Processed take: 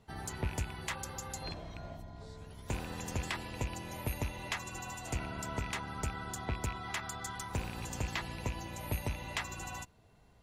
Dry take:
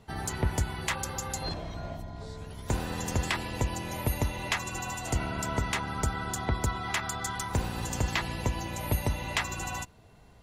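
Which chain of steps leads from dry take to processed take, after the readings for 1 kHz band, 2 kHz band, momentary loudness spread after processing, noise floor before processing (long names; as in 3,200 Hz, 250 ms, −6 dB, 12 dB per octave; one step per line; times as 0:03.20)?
−7.5 dB, −7.0 dB, 8 LU, −55 dBFS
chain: loose part that buzzes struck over −32 dBFS, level −25 dBFS
level −7.5 dB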